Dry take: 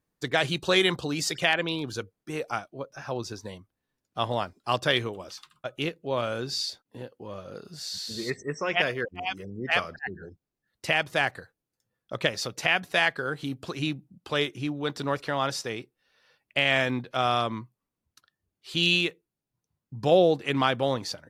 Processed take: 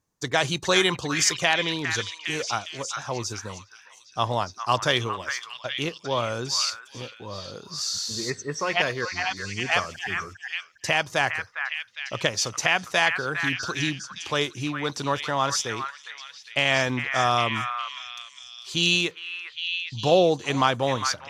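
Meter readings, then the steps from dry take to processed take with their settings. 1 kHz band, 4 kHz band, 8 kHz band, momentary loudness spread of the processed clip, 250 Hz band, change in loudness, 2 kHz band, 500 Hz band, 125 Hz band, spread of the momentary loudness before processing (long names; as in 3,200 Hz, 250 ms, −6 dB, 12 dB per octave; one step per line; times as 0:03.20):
+4.0 dB, +3.5 dB, +10.5 dB, 13 LU, +0.5 dB, +2.0 dB, +3.0 dB, +1.0 dB, +2.5 dB, 17 LU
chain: graphic EQ with 15 bands 100 Hz +6 dB, 1,000 Hz +6 dB, 6,300 Hz +12 dB
echo through a band-pass that steps 406 ms, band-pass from 1,600 Hz, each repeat 0.7 octaves, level −3 dB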